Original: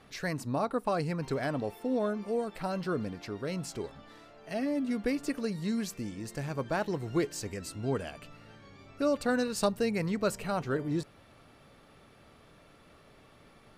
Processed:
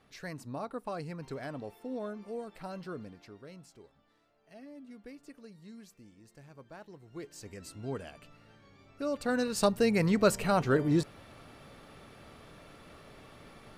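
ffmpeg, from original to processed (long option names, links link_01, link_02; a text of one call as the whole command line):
ffmpeg -i in.wav -af "volume=15dB,afade=type=out:start_time=2.75:duration=0.97:silence=0.316228,afade=type=in:start_time=7.1:duration=0.57:silence=0.251189,afade=type=in:start_time=9.06:duration=1.06:silence=0.281838" out.wav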